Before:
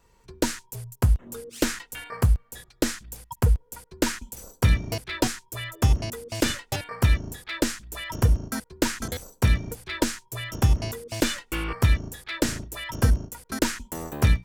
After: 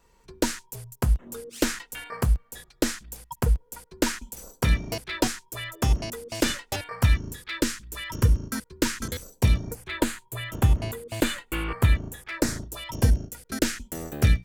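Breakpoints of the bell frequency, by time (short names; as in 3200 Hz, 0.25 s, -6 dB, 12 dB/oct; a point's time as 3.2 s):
bell -13 dB 0.41 oct
6.65 s 95 Hz
7.24 s 720 Hz
9.2 s 720 Hz
9.92 s 5500 Hz
12.06 s 5500 Hz
13.24 s 990 Hz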